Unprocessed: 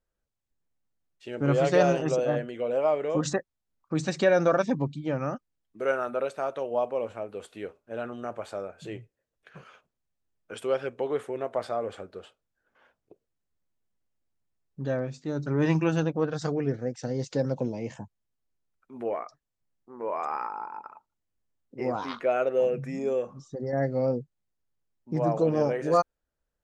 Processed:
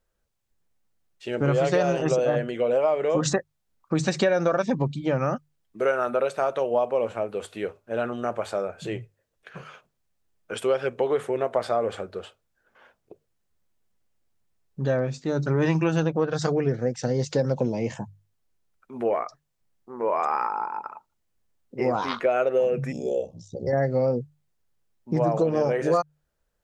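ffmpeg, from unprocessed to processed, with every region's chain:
ffmpeg -i in.wav -filter_complex "[0:a]asettb=1/sr,asplit=3[link_01][link_02][link_03];[link_01]atrim=end=22.924[link_04];[link_02]atrim=start=22.92:end=23.67,asetpts=PTS-STARTPTS,afade=type=in:duration=0.004:curve=qsin,afade=type=out:start_time=0.746:duration=0.004:curve=qsin,asuperstop=centerf=1500:order=8:qfactor=0.66,equalizer=frequency=310:width_type=o:width=1.1:gain=-6.5,aeval=exprs='val(0)*sin(2*PI*32*n/s)':channel_layout=same[link_05];[link_03]atrim=start=23.666[link_06];[link_04][link_05]acrossfade=duration=0.004:curve1=hsin:curve2=qsin[link_07];[link_07][link_06]acrossfade=duration=0.004:curve1=qsin:curve2=hsin,equalizer=frequency=280:width=6.9:gain=-6.5,bandreject=frequency=50:width_type=h:width=6,bandreject=frequency=100:width_type=h:width=6,bandreject=frequency=150:width_type=h:width=6,acompressor=threshold=-26dB:ratio=6,volume=7.5dB" out.wav

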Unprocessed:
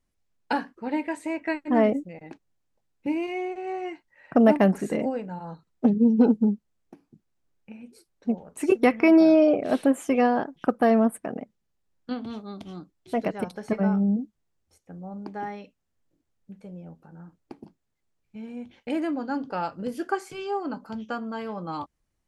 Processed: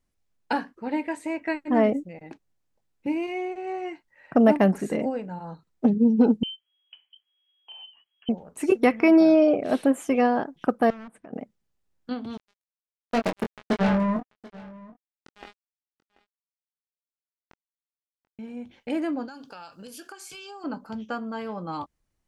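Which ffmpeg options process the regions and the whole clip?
ffmpeg -i in.wav -filter_complex "[0:a]asettb=1/sr,asplit=3[link_01][link_02][link_03];[link_01]atrim=end=6.434[link_04];[link_02]atrim=start=6.43:end=8.29,asetpts=PTS-STARTPTS,afade=type=in:duration=0.004:curve=qsin,afade=type=out:start_time=1.856:duration=0.004:curve=qsin,acompressor=threshold=-40dB:ratio=2.5:attack=3.2:release=140:knee=1:detection=peak,lowpass=frequency=2800:width_type=q:width=0.5098,lowpass=frequency=2800:width_type=q:width=0.6013,lowpass=frequency=2800:width_type=q:width=0.9,lowpass=frequency=2800:width_type=q:width=2.563,afreqshift=-3300[link_05];[link_03]atrim=start=8.286[link_06];[link_04][link_05]acrossfade=duration=0.004:curve1=hsin:curve2=qsin[link_07];[link_07][link_06]acrossfade=duration=0.004:curve1=qsin:curve2=hsin,asettb=1/sr,asplit=3[link_08][link_09][link_10];[link_08]atrim=end=10.904[link_11];[link_09]atrim=start=10.9:end=11.33,asetpts=PTS-STARTPTS,afade=type=in:duration=0.004:curve=qsin,afade=type=out:start_time=0.426:duration=0.004:curve=qsin,aeval=exprs='0.1*(abs(mod(val(0)/0.1+3,4)-2)-1)':channel_layout=same,lowpass=4600,acompressor=threshold=-43dB:ratio=4:attack=3.2:release=140:knee=1:detection=peak[link_12];[link_10]atrim=start=11.326[link_13];[link_11][link_12]acrossfade=duration=0.004:curve1=hsin:curve2=qsin[link_14];[link_14][link_13]acrossfade=duration=0.004:curve1=qsin:curve2=hsin,asettb=1/sr,asplit=3[link_15][link_16][link_17];[link_15]atrim=end=12.374[link_18];[link_16]atrim=start=12.37:end=18.39,asetpts=PTS-STARTPTS,afade=type=in:duration=0.004:curve=qsin,afade=type=out:start_time=6.016:duration=0.004:curve=qsin,acrusher=bits=3:mix=0:aa=0.5,asplit=2[link_19][link_20];[link_20]adelay=22,volume=-5dB[link_21];[link_19][link_21]amix=inputs=2:normalize=0,atrim=end_sample=265482,aecho=1:1:736:0.0891,atrim=end_sample=265482[link_22];[link_17]atrim=start=18.386[link_23];[link_18][link_22]acrossfade=duration=0.004:curve1=hsin:curve2=qsin[link_24];[link_24][link_23]acrossfade=duration=0.004:curve1=qsin:curve2=hsin,asettb=1/sr,asplit=3[link_25][link_26][link_27];[link_25]atrim=end=19.284[link_28];[link_26]atrim=start=19.28:end=20.64,asetpts=PTS-STARTPTS,afade=type=in:duration=0.004:curve=qsin,afade=type=out:start_time=1.356:duration=0.004:curve=qsin,tiltshelf=frequency=1400:gain=-10,bandreject=frequency=2000:width=5.1,acompressor=threshold=-38dB:ratio=12:attack=3.2:release=140:knee=1:detection=peak[link_29];[link_27]atrim=start=20.636[link_30];[link_28][link_29]acrossfade=duration=0.004:curve1=hsin:curve2=qsin[link_31];[link_31][link_30]acrossfade=duration=0.004:curve1=qsin:curve2=hsin" out.wav

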